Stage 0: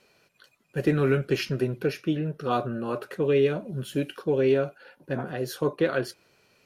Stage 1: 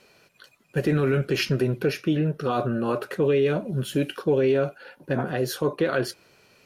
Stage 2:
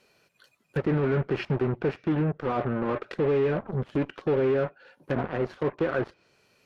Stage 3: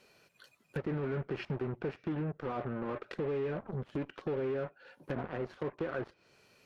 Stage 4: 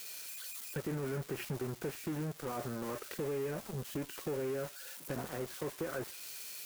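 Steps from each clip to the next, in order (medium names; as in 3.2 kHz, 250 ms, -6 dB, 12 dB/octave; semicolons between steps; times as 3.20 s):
peak limiter -19.5 dBFS, peak gain reduction 8 dB; trim +5.5 dB
saturation -25 dBFS, distortion -9 dB; Chebyshev shaper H 3 -7 dB, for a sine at -25 dBFS; low-pass that closes with the level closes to 1.9 kHz, closed at -28.5 dBFS; trim +2.5 dB
compression 2:1, threshold -41 dBFS, peak gain reduction 10.5 dB
zero-crossing glitches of -34 dBFS; trim -2.5 dB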